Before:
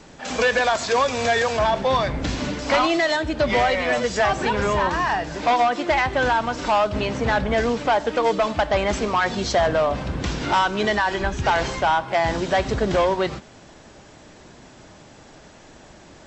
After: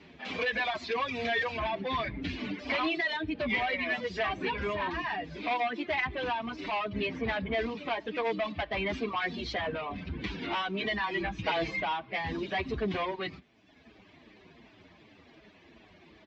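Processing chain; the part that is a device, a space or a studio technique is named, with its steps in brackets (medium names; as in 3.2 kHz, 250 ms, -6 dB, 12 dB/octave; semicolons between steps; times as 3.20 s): reverb removal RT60 1.1 s; barber-pole flanger into a guitar amplifier (endless flanger 7.8 ms -2.7 Hz; saturation -20 dBFS, distortion -13 dB; cabinet simulation 77–3900 Hz, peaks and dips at 130 Hz -10 dB, 540 Hz -8 dB, 840 Hz -7 dB, 1.4 kHz -8 dB, 2.3 kHz +5 dB); 11.03–11.84 s: comb 6.2 ms, depth 98%; trim -1.5 dB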